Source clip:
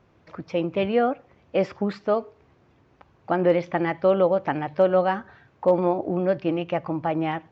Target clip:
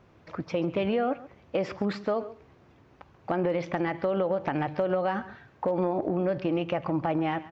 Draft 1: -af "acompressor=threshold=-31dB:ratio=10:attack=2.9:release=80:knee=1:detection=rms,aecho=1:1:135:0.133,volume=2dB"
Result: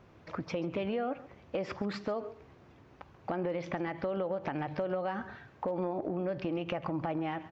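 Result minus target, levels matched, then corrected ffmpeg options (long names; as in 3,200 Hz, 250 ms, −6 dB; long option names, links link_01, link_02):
downward compressor: peak gain reduction +7 dB
-af "acompressor=threshold=-23.5dB:ratio=10:attack=2.9:release=80:knee=1:detection=rms,aecho=1:1:135:0.133,volume=2dB"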